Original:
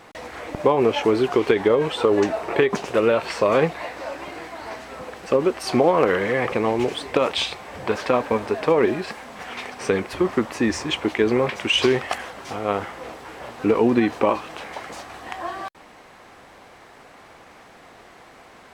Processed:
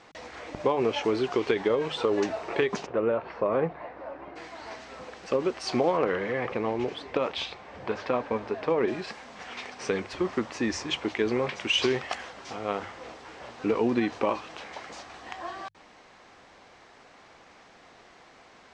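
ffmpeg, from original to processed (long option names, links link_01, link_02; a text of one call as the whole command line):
ffmpeg -i in.wav -filter_complex "[0:a]asplit=3[link_01][link_02][link_03];[link_01]afade=type=out:start_time=2.85:duration=0.02[link_04];[link_02]lowpass=1300,afade=type=in:start_time=2.85:duration=0.02,afade=type=out:start_time=4.35:duration=0.02[link_05];[link_03]afade=type=in:start_time=4.35:duration=0.02[link_06];[link_04][link_05][link_06]amix=inputs=3:normalize=0,asettb=1/sr,asplit=3[link_07][link_08][link_09];[link_07]atrim=end=5.974[link_10];[link_08]atrim=start=5.97:end=8.88,asetpts=PTS-STARTPTS,afade=type=in:duration=0.004:curve=qsin,afade=type=out:start_time=2.906:duration=0.004:curve=qsin,lowpass=frequency=2300:poles=1[link_11];[link_09]atrim=start=8.876[link_12];[link_10][link_11]acrossfade=duration=0.004:curve1=hsin:curve2=qsin[link_13];[link_13][link_12]acrossfade=duration=0.004:curve1=qsin:curve2=hsin,lowpass=frequency=6400:width=0.5412,lowpass=frequency=6400:width=1.3066,aemphasis=mode=production:type=cd,bandreject=frequency=50:width_type=h:width=6,bandreject=frequency=100:width_type=h:width=6,bandreject=frequency=150:width_type=h:width=6,volume=-7dB" out.wav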